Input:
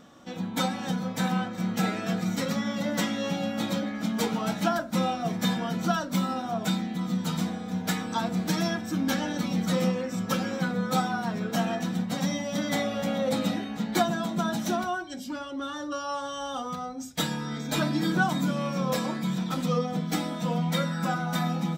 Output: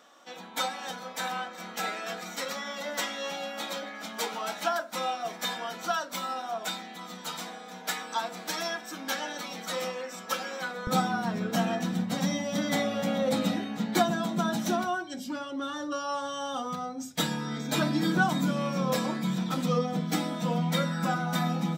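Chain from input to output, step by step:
high-pass filter 590 Hz 12 dB per octave, from 0:10.87 120 Hz

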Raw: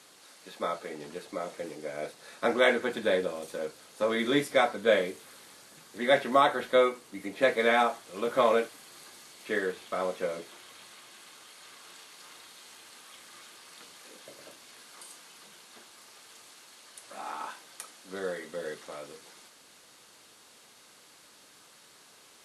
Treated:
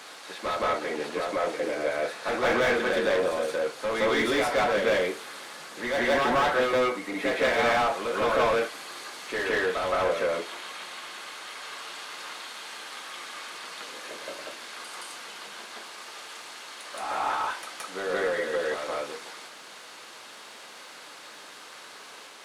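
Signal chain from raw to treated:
surface crackle 450 per second −55 dBFS
mid-hump overdrive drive 28 dB, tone 2,200 Hz, clips at −9.5 dBFS
backwards echo 170 ms −3.5 dB
level −7 dB

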